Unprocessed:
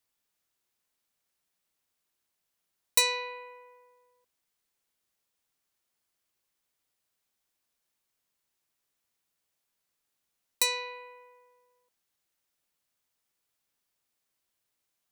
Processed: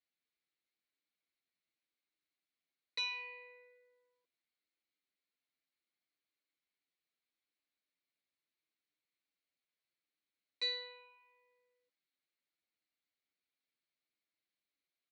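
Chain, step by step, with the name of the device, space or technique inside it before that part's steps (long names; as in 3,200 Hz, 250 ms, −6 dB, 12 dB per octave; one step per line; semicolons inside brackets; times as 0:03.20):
barber-pole flanger into a guitar amplifier (barber-pole flanger 8.3 ms −0.74 Hz; soft clipping −23.5 dBFS, distortion −11 dB; loudspeaker in its box 100–4,200 Hz, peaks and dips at 110 Hz −8 dB, 300 Hz +7 dB, 920 Hz −9 dB, 2,200 Hz +8 dB, 4,200 Hz +9 dB)
level −8 dB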